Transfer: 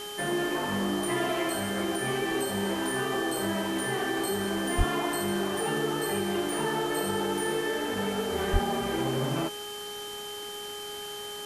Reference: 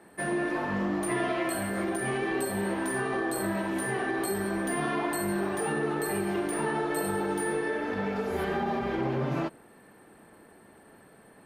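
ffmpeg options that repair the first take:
-filter_complex "[0:a]bandreject=f=413.5:t=h:w=4,bandreject=f=827:t=h:w=4,bandreject=f=1240.5:t=h:w=4,bandreject=f=1654:t=h:w=4,bandreject=f=3100:w=30,asplit=3[s0][s1][s2];[s0]afade=t=out:st=4.77:d=0.02[s3];[s1]highpass=f=140:w=0.5412,highpass=f=140:w=1.3066,afade=t=in:st=4.77:d=0.02,afade=t=out:st=4.89:d=0.02[s4];[s2]afade=t=in:st=4.89:d=0.02[s5];[s3][s4][s5]amix=inputs=3:normalize=0,asplit=3[s6][s7][s8];[s6]afade=t=out:st=8.52:d=0.02[s9];[s7]highpass=f=140:w=0.5412,highpass=f=140:w=1.3066,afade=t=in:st=8.52:d=0.02,afade=t=out:st=8.64:d=0.02[s10];[s8]afade=t=in:st=8.64:d=0.02[s11];[s9][s10][s11]amix=inputs=3:normalize=0,afwtdn=0.0071"

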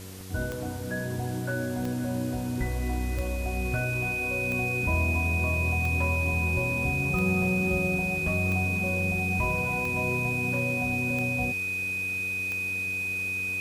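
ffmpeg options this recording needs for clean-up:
-af "adeclick=t=4,bandreject=f=94.3:t=h:w=4,bandreject=f=188.6:t=h:w=4,bandreject=f=282.9:t=h:w=4,bandreject=f=377.2:t=h:w=4,bandreject=f=471.5:t=h:w=4,bandreject=f=2500:w=30,afwtdn=0.005"

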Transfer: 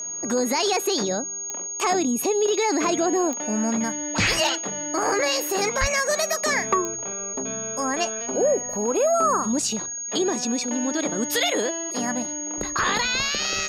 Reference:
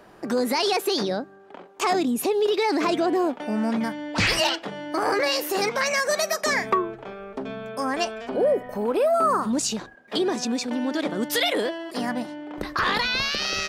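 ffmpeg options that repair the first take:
-filter_complex "[0:a]adeclick=t=4,bandreject=f=6600:w=30,asplit=3[s0][s1][s2];[s0]afade=t=out:st=5.8:d=0.02[s3];[s1]highpass=f=140:w=0.5412,highpass=f=140:w=1.3066,afade=t=in:st=5.8:d=0.02,afade=t=out:st=5.92:d=0.02[s4];[s2]afade=t=in:st=5.92:d=0.02[s5];[s3][s4][s5]amix=inputs=3:normalize=0"

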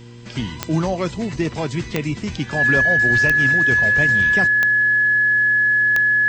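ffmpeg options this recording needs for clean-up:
-af "adeclick=t=4,bandreject=f=118.7:t=h:w=4,bandreject=f=237.4:t=h:w=4,bandreject=f=356.1:t=h:w=4,bandreject=f=474.8:t=h:w=4,bandreject=f=1700:w=30"

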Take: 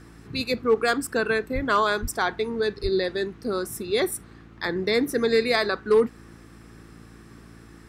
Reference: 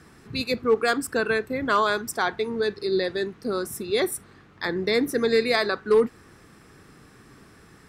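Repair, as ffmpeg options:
-filter_complex "[0:a]bandreject=f=56.3:t=h:w=4,bandreject=f=112.6:t=h:w=4,bandreject=f=168.9:t=h:w=4,bandreject=f=225.2:t=h:w=4,bandreject=f=281.5:t=h:w=4,bandreject=f=337.8:t=h:w=4,asplit=3[s0][s1][s2];[s0]afade=t=out:st=1.54:d=0.02[s3];[s1]highpass=f=140:w=0.5412,highpass=f=140:w=1.3066,afade=t=in:st=1.54:d=0.02,afade=t=out:st=1.66:d=0.02[s4];[s2]afade=t=in:st=1.66:d=0.02[s5];[s3][s4][s5]amix=inputs=3:normalize=0,asplit=3[s6][s7][s8];[s6]afade=t=out:st=2.01:d=0.02[s9];[s7]highpass=f=140:w=0.5412,highpass=f=140:w=1.3066,afade=t=in:st=2.01:d=0.02,afade=t=out:st=2.13:d=0.02[s10];[s8]afade=t=in:st=2.13:d=0.02[s11];[s9][s10][s11]amix=inputs=3:normalize=0,asplit=3[s12][s13][s14];[s12]afade=t=out:st=2.82:d=0.02[s15];[s13]highpass=f=140:w=0.5412,highpass=f=140:w=1.3066,afade=t=in:st=2.82:d=0.02,afade=t=out:st=2.94:d=0.02[s16];[s14]afade=t=in:st=2.94:d=0.02[s17];[s15][s16][s17]amix=inputs=3:normalize=0"

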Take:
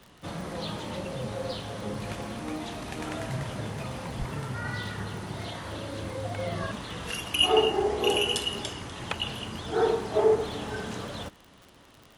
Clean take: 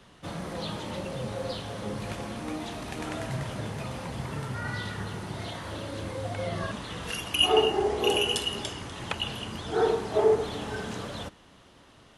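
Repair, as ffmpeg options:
-filter_complex "[0:a]adeclick=t=4,asplit=3[s0][s1][s2];[s0]afade=t=out:st=4.18:d=0.02[s3];[s1]highpass=f=140:w=0.5412,highpass=f=140:w=1.3066,afade=t=in:st=4.18:d=0.02,afade=t=out:st=4.3:d=0.02[s4];[s2]afade=t=in:st=4.3:d=0.02[s5];[s3][s4][s5]amix=inputs=3:normalize=0"

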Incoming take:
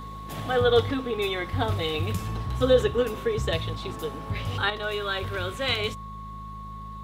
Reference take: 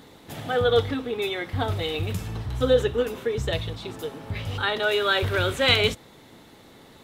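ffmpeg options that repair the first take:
-af "bandreject=f=52.8:t=h:w=4,bandreject=f=105.6:t=h:w=4,bandreject=f=158.4:t=h:w=4,bandreject=f=211.2:t=h:w=4,bandreject=f=1100:w=30,asetnsamples=n=441:p=0,asendcmd='4.7 volume volume 7dB',volume=1"

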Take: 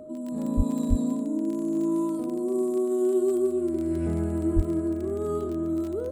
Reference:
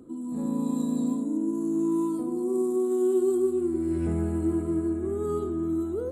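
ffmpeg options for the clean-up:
-filter_complex "[0:a]adeclick=t=4,bandreject=f=620:w=30,asplit=3[s0][s1][s2];[s0]afade=t=out:st=0.56:d=0.02[s3];[s1]highpass=f=140:w=0.5412,highpass=f=140:w=1.3066,afade=t=in:st=0.56:d=0.02,afade=t=out:st=0.68:d=0.02[s4];[s2]afade=t=in:st=0.68:d=0.02[s5];[s3][s4][s5]amix=inputs=3:normalize=0,asplit=3[s6][s7][s8];[s6]afade=t=out:st=0.89:d=0.02[s9];[s7]highpass=f=140:w=0.5412,highpass=f=140:w=1.3066,afade=t=in:st=0.89:d=0.02,afade=t=out:st=1.01:d=0.02[s10];[s8]afade=t=in:st=1.01:d=0.02[s11];[s9][s10][s11]amix=inputs=3:normalize=0,asplit=3[s12][s13][s14];[s12]afade=t=out:st=4.55:d=0.02[s15];[s13]highpass=f=140:w=0.5412,highpass=f=140:w=1.3066,afade=t=in:st=4.55:d=0.02,afade=t=out:st=4.67:d=0.02[s16];[s14]afade=t=in:st=4.67:d=0.02[s17];[s15][s16][s17]amix=inputs=3:normalize=0"

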